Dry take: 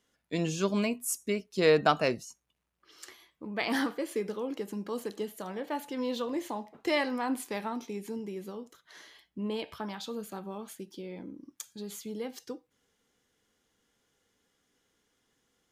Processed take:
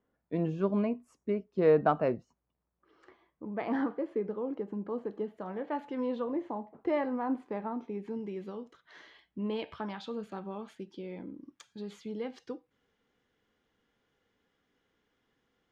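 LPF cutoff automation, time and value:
5.08 s 1100 Hz
5.86 s 2000 Hz
6.42 s 1100 Hz
7.75 s 1100 Hz
8.35 s 3000 Hz

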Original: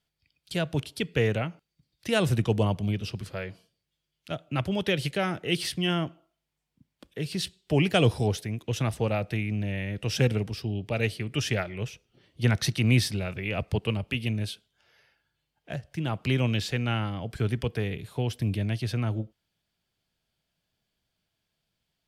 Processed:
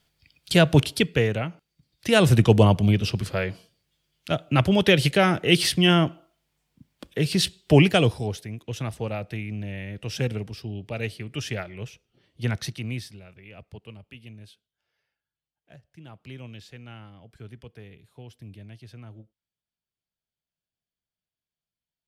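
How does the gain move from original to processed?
0.91 s +11.5 dB
1.29 s +0.5 dB
2.46 s +8.5 dB
7.76 s +8.5 dB
8.2 s -3 dB
12.55 s -3 dB
13.21 s -15.5 dB

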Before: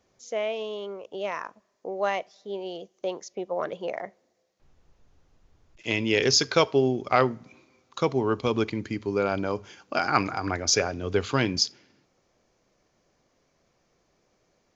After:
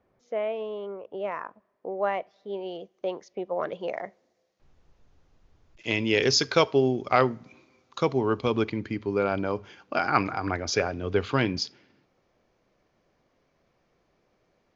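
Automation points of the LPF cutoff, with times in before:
2.09 s 1800 Hz
2.56 s 3100 Hz
3.47 s 3100 Hz
3.99 s 6100 Hz
8 s 6100 Hz
8.84 s 3700 Hz

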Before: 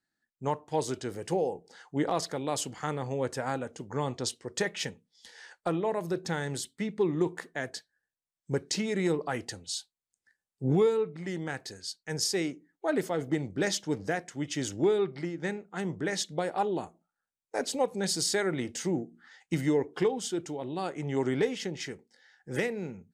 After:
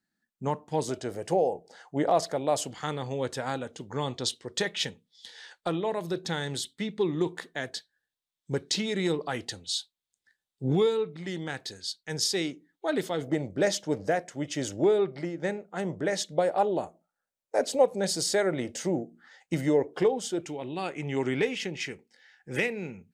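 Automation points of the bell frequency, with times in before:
bell +10 dB 0.58 oct
200 Hz
from 0.89 s 640 Hz
from 2.71 s 3600 Hz
from 13.24 s 590 Hz
from 20.42 s 2500 Hz

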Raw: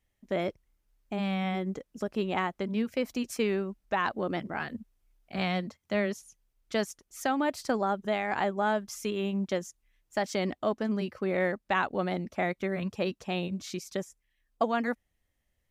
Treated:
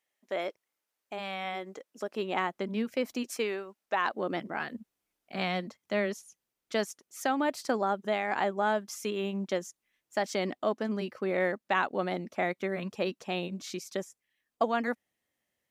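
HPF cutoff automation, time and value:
1.79 s 490 Hz
2.6 s 200 Hz
3.16 s 200 Hz
3.65 s 600 Hz
4.31 s 210 Hz

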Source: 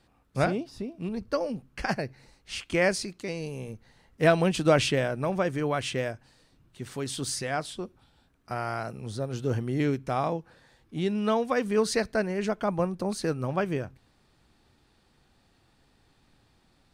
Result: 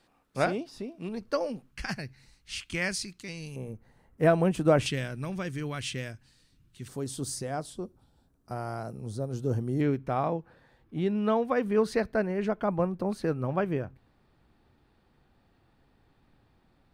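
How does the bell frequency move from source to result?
bell -13.5 dB 2.1 oct
68 Hz
from 1.71 s 550 Hz
from 3.56 s 4300 Hz
from 4.86 s 680 Hz
from 6.88 s 2400 Hz
from 9.81 s 7100 Hz

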